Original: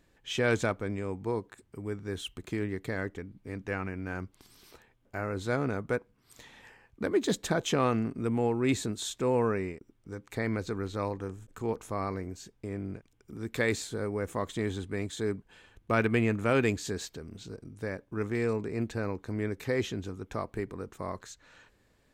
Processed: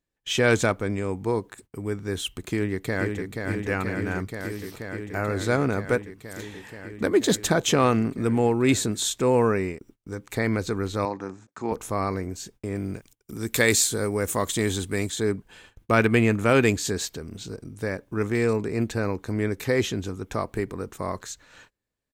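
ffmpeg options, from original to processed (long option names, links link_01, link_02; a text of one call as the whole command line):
ffmpeg -i in.wav -filter_complex "[0:a]asplit=2[link_01][link_02];[link_02]afade=type=in:start_time=2.51:duration=0.01,afade=type=out:start_time=3.34:duration=0.01,aecho=0:1:480|960|1440|1920|2400|2880|3360|3840|4320|4800|5280|5760:0.595662|0.506313|0.430366|0.365811|0.310939|0.264298|0.224654|0.190956|0.162312|0.137965|0.117271|0.09968[link_03];[link_01][link_03]amix=inputs=2:normalize=0,asettb=1/sr,asplit=3[link_04][link_05][link_06];[link_04]atrim=end=11.054[link_07];[link_05]atrim=start=11.05:end=11.72,asetpts=PTS-STARTPTS,afade=type=in:duration=0.004:curve=qsin,afade=type=out:start_time=0.666:duration=0.004:curve=qsin,highpass=200,equalizer=frequency=450:width_type=q:width=4:gain=-7,equalizer=frequency=850:width_type=q:width=4:gain=3,equalizer=frequency=3100:width_type=q:width=4:gain=-10,lowpass=frequency=6100:width=0.5412,lowpass=frequency=6100:width=1.3066[link_08];[link_06]atrim=start=11.716[link_09];[link_07][link_08]acrossfade=duration=0.004:curve1=hsin:curve2=qsin[link_10];[link_10][link_09]acrossfade=duration=0.004:curve1=qsin:curve2=hsin,asettb=1/sr,asplit=3[link_11][link_12][link_13];[link_11]atrim=end=12.754[link_14];[link_12]atrim=start=12.75:end=15.1,asetpts=PTS-STARTPTS,afade=type=in:duration=0.004:curve=qsin,afade=type=out:start_time=2.346:duration=0.004:curve=qsin,highshelf=frequency=4400:gain=11[link_15];[link_13]atrim=start=15.096[link_16];[link_14][link_15]acrossfade=duration=0.004:curve1=hsin:curve2=qsin[link_17];[link_17][link_16]acrossfade=duration=0.004:curve1=qsin:curve2=hsin,agate=range=-26dB:threshold=-57dB:ratio=16:detection=peak,highshelf=frequency=5700:gain=7,volume=6.5dB" out.wav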